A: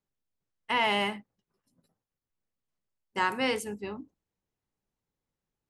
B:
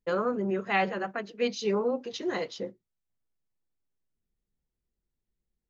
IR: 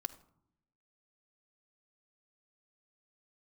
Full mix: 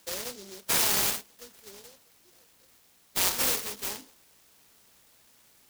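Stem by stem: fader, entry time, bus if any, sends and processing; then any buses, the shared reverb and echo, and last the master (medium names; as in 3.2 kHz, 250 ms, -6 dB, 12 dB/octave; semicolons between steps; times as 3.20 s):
-1.0 dB, 0.00 s, no send, spectral levelling over time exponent 0.6; de-hum 175.2 Hz, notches 10; de-esser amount 90%
1.78 s -1 dB -> 2.02 s -12.5 dB, 0.00 s, no send, median filter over 25 samples; auto duck -14 dB, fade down 1.10 s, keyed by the first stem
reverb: none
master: hum 60 Hz, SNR 25 dB; frequency weighting ITU-R 468; delay time shaken by noise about 4.9 kHz, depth 0.28 ms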